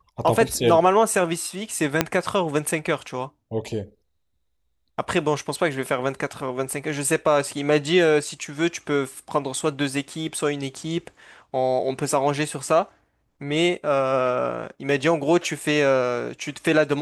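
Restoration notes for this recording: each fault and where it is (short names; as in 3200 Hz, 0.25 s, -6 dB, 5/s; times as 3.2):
2.01 pop -2 dBFS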